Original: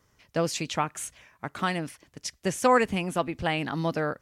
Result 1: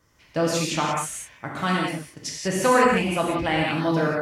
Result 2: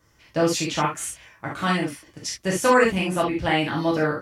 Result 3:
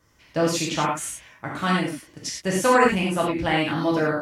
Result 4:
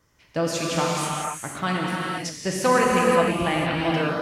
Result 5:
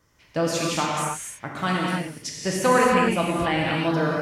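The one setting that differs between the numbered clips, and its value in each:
gated-style reverb, gate: 210 ms, 90 ms, 130 ms, 530 ms, 320 ms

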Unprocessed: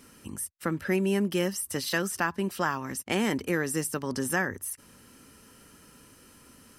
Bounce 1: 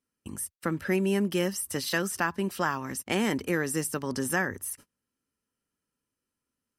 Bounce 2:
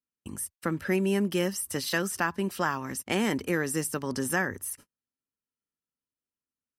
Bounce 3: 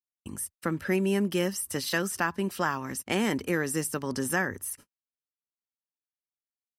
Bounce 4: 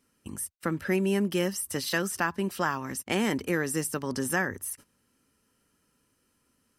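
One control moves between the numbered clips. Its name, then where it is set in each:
gate, range: -32 dB, -45 dB, -59 dB, -17 dB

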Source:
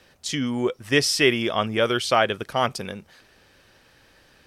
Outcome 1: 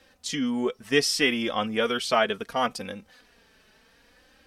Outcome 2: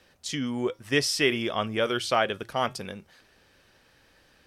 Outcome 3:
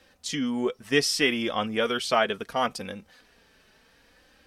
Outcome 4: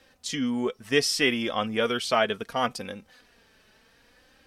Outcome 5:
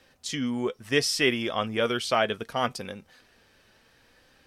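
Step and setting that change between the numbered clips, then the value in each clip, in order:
flange, regen: 0%, -89%, -21%, +26%, +68%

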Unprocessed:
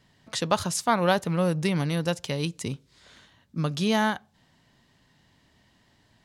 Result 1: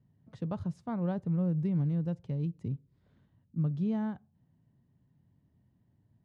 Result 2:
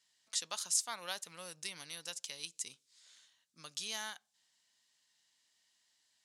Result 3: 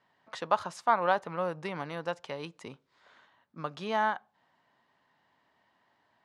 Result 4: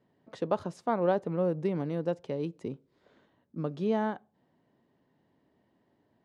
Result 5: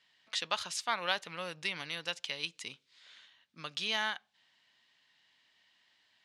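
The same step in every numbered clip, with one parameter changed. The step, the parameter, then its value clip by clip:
band-pass filter, frequency: 120 Hz, 7.8 kHz, 1 kHz, 400 Hz, 2.9 kHz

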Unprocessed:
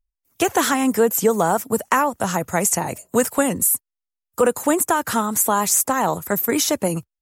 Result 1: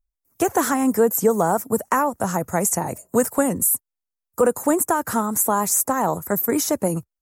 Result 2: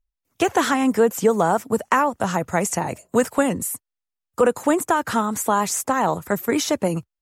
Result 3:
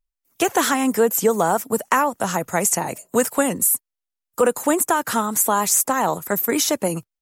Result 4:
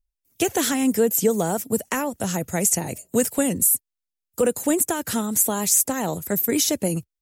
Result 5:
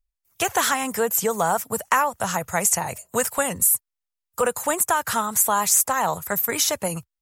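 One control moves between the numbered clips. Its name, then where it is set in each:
peaking EQ, frequency: 3.2 kHz, 15 kHz, 69 Hz, 1.1 kHz, 290 Hz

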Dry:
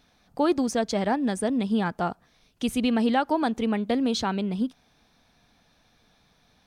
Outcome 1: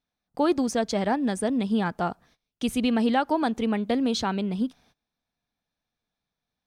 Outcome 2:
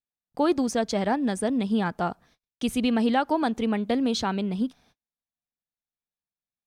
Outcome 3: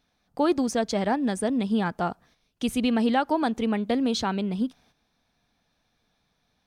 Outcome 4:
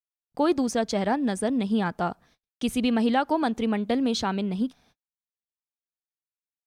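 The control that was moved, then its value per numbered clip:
gate, range: -23 dB, -40 dB, -9 dB, -54 dB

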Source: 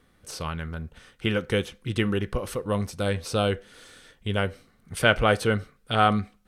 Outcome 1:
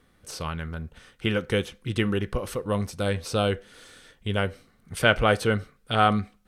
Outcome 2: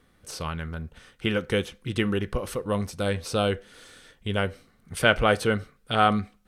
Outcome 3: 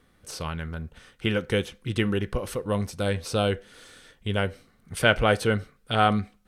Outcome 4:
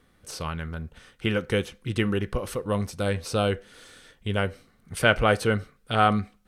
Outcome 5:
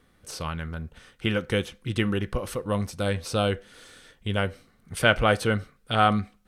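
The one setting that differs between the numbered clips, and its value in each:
dynamic bell, frequency: 9.9 kHz, 110 Hz, 1.2 kHz, 3.4 kHz, 420 Hz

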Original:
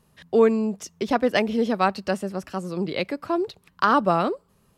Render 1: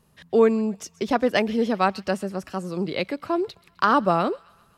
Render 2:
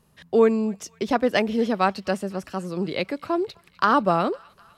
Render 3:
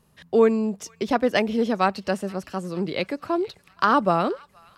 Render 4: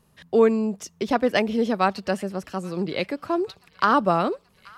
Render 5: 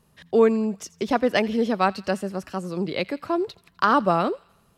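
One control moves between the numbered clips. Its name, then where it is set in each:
feedback echo behind a high-pass, time: 129 ms, 252 ms, 468 ms, 830 ms, 84 ms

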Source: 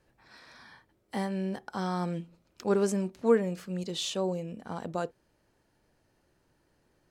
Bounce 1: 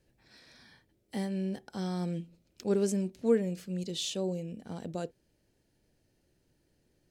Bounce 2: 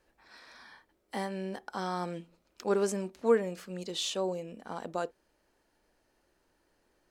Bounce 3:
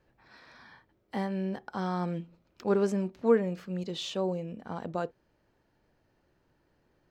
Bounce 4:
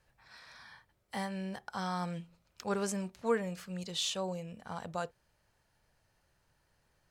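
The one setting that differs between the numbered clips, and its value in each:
peaking EQ, frequency: 1.1 kHz, 120 Hz, 9.9 kHz, 310 Hz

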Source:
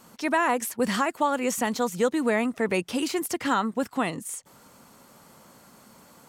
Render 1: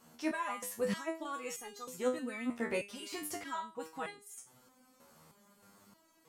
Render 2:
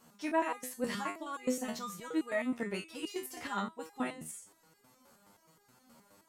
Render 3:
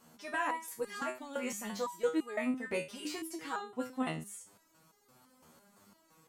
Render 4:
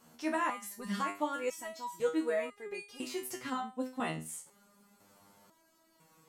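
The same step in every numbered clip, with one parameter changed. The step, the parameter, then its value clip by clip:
resonator arpeggio, rate: 3.2 Hz, 9.5 Hz, 5.9 Hz, 2 Hz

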